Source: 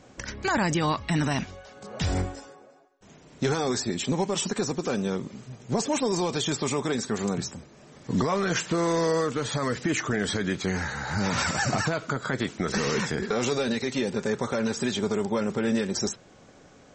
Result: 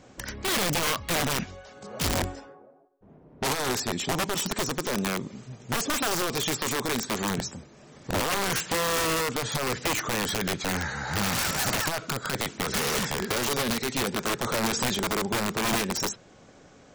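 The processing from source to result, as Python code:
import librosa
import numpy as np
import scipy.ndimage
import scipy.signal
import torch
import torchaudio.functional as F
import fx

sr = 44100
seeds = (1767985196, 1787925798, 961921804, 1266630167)

y = (np.mod(10.0 ** (20.5 / 20.0) * x + 1.0, 2.0) - 1.0) / 10.0 ** (20.5 / 20.0)
y = fx.env_lowpass(y, sr, base_hz=660.0, full_db=-25.0, at=(2.2, 4.3), fade=0.02)
y = fx.transient(y, sr, attack_db=3, sustain_db=7, at=(14.43, 14.95))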